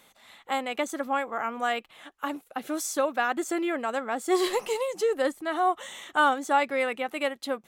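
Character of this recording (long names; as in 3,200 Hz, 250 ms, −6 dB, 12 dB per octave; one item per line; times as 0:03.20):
background noise floor −61 dBFS
spectral slope −5.5 dB per octave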